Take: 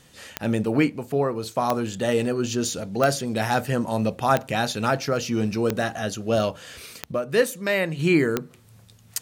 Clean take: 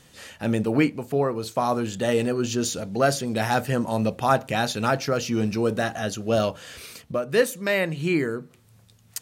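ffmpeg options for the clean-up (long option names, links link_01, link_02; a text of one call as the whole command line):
ffmpeg -i in.wav -af "adeclick=threshold=4,asetnsamples=nb_out_samples=441:pad=0,asendcmd='7.99 volume volume -4dB',volume=0dB" out.wav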